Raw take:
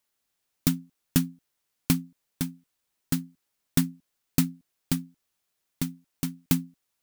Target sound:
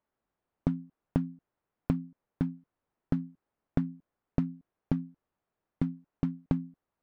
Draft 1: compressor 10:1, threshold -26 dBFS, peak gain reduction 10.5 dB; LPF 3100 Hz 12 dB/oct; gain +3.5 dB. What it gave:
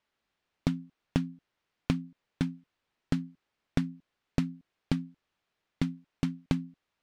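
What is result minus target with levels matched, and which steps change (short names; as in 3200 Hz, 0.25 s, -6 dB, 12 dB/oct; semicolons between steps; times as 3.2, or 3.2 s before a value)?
4000 Hz band +16.0 dB
change: LPF 1100 Hz 12 dB/oct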